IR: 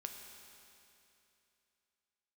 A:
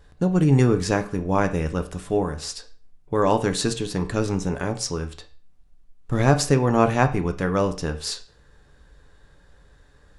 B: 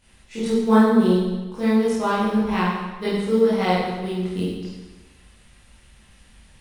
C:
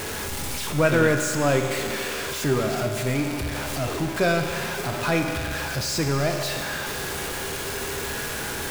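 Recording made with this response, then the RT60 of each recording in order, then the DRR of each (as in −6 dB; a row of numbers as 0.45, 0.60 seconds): C; 0.40, 1.2, 2.8 seconds; 6.5, −12.0, 3.0 decibels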